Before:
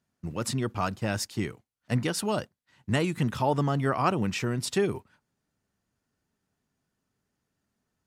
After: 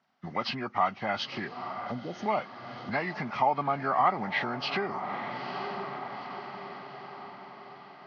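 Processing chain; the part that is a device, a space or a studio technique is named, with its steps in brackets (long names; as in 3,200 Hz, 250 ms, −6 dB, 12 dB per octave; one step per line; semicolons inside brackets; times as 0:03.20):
0:01.47–0:02.26: inverse Chebyshev band-stop filter 1,300–8,100 Hz, stop band 50 dB
feedback delay with all-pass diffusion 912 ms, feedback 54%, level −15 dB
hearing aid with frequency lowering (hearing-aid frequency compression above 1,200 Hz 1.5 to 1; downward compressor 3 to 1, threshold −35 dBFS, peak gain reduction 11.5 dB; loudspeaker in its box 280–5,200 Hz, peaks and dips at 320 Hz −8 dB, 470 Hz −8 dB, 770 Hz +9 dB, 1,200 Hz +5 dB, 2,000 Hz +5 dB, 3,700 Hz −6 dB)
level +8 dB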